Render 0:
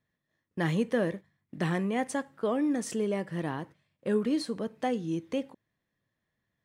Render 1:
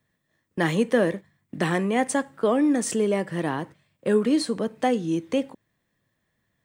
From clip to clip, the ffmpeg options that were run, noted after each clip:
-filter_complex "[0:a]acrossover=split=190[a][b];[a]acompressor=threshold=-45dB:ratio=6[c];[b]aexciter=amount=1.5:drive=2.4:freq=7.5k[d];[c][d]amix=inputs=2:normalize=0,volume=7.5dB"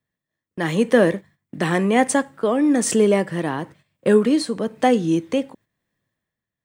-af "agate=range=-9dB:threshold=-51dB:ratio=16:detection=peak,dynaudnorm=f=120:g=11:m=7.5dB,tremolo=f=1:d=0.43"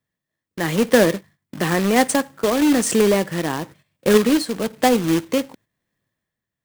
-af "acrusher=bits=2:mode=log:mix=0:aa=0.000001"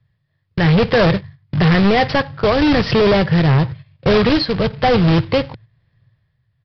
-af "lowshelf=f=170:t=q:w=3:g=12,aresample=11025,asoftclip=type=hard:threshold=-19dB,aresample=44100,volume=9dB"

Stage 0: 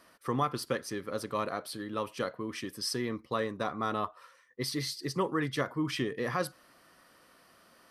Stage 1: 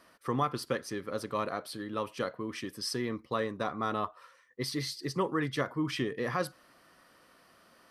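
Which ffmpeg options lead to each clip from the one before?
-af "highshelf=f=7k:g=-4"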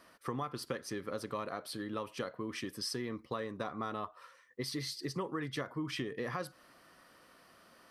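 -af "acompressor=threshold=-35dB:ratio=4"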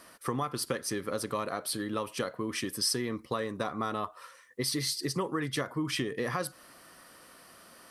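-af "equalizer=f=10k:t=o:w=1.2:g=9.5,volume=5.5dB"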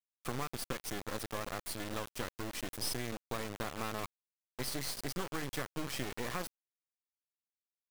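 -af "acrusher=bits=3:dc=4:mix=0:aa=0.000001,volume=-4dB"

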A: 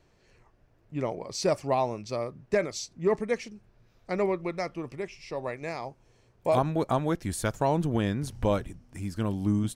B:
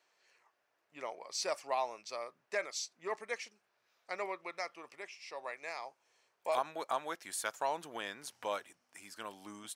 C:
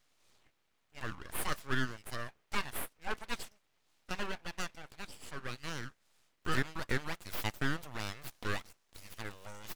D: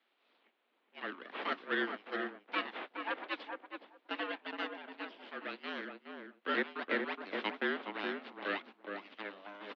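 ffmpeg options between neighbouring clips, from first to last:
-af "highpass=870,volume=-3dB"
-af "aeval=exprs='abs(val(0))':c=same,volume=3.5dB"
-filter_complex "[0:a]highpass=f=150:t=q:w=0.5412,highpass=f=150:t=q:w=1.307,lowpass=f=3.6k:t=q:w=0.5176,lowpass=f=3.6k:t=q:w=0.7071,lowpass=f=3.6k:t=q:w=1.932,afreqshift=95,asplit=2[a][b];[b]adelay=418,lowpass=f=1.2k:p=1,volume=-3.5dB,asplit=2[c][d];[d]adelay=418,lowpass=f=1.2k:p=1,volume=0.16,asplit=2[e][f];[f]adelay=418,lowpass=f=1.2k:p=1,volume=0.16[g];[a][c][e][g]amix=inputs=4:normalize=0,volume=1dB"

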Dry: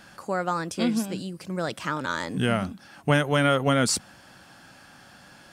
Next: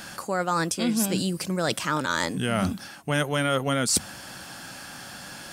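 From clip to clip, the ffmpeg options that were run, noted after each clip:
-af "highshelf=f=4.9k:g=9.5,bandreject=f=50:t=h:w=6,bandreject=f=100:t=h:w=6,areverse,acompressor=threshold=-29dB:ratio=10,areverse,volume=8dB"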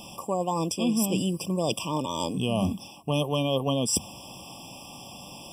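-af "afftfilt=real='re*eq(mod(floor(b*sr/1024/1200),2),0)':imag='im*eq(mod(floor(b*sr/1024/1200),2),0)':win_size=1024:overlap=0.75"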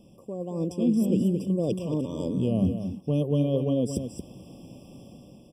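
-filter_complex "[0:a]firequalizer=gain_entry='entry(490,0);entry(840,-20);entry(1400,-18)':delay=0.05:min_phase=1,dynaudnorm=f=120:g=9:m=8dB,asplit=2[a][b];[b]aecho=0:1:225:0.376[c];[a][c]amix=inputs=2:normalize=0,volume=-5.5dB"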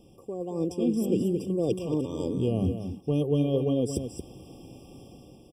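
-af "aecho=1:1:2.5:0.46"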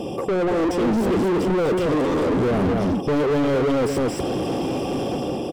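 -filter_complex "[0:a]asplit=2[a][b];[b]highpass=f=720:p=1,volume=43dB,asoftclip=type=tanh:threshold=-13dB[c];[a][c]amix=inputs=2:normalize=0,lowpass=f=1.1k:p=1,volume=-6dB"

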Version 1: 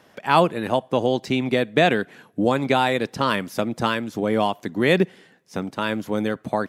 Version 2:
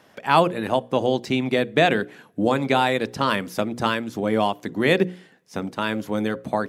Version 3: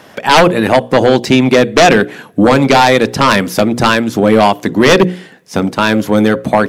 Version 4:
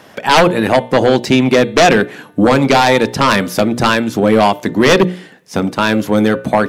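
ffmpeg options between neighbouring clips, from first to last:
-af "bandreject=f=60:t=h:w=6,bandreject=f=120:t=h:w=6,bandreject=f=180:t=h:w=6,bandreject=f=240:t=h:w=6,bandreject=f=300:t=h:w=6,bandreject=f=360:t=h:w=6,bandreject=f=420:t=h:w=6,bandreject=f=480:t=h:w=6,bandreject=f=540:t=h:w=6"
-af "aeval=exprs='0.708*sin(PI/2*3.16*val(0)/0.708)':c=same,volume=1.5dB"
-af "bandreject=f=298.4:t=h:w=4,bandreject=f=596.8:t=h:w=4,bandreject=f=895.2:t=h:w=4,bandreject=f=1.1936k:t=h:w=4,bandreject=f=1.492k:t=h:w=4,bandreject=f=1.7904k:t=h:w=4,bandreject=f=2.0888k:t=h:w=4,bandreject=f=2.3872k:t=h:w=4,bandreject=f=2.6856k:t=h:w=4,bandreject=f=2.984k:t=h:w=4,bandreject=f=3.2824k:t=h:w=4,bandreject=f=3.5808k:t=h:w=4,bandreject=f=3.8792k:t=h:w=4,bandreject=f=4.1776k:t=h:w=4,volume=-2dB"

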